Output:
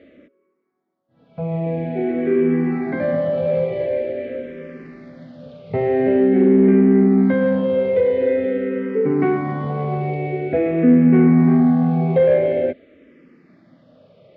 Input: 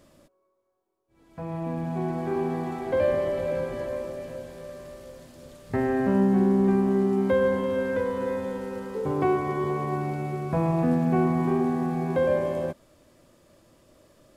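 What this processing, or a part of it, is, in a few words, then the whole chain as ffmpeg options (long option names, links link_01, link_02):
barber-pole phaser into a guitar amplifier: -filter_complex "[0:a]lowpass=6600,asplit=2[link_01][link_02];[link_02]afreqshift=-0.47[link_03];[link_01][link_03]amix=inputs=2:normalize=1,asoftclip=type=tanh:threshold=-18.5dB,highpass=94,equalizer=frequency=170:width_type=q:width=4:gain=7,equalizer=frequency=260:width_type=q:width=4:gain=9,equalizer=frequency=450:width_type=q:width=4:gain=10,equalizer=frequency=640:width_type=q:width=4:gain=3,equalizer=frequency=1000:width_type=q:width=4:gain=-10,equalizer=frequency=2100:width_type=q:width=4:gain=10,lowpass=frequency=3800:width=0.5412,lowpass=frequency=3800:width=1.3066,volume=6.5dB"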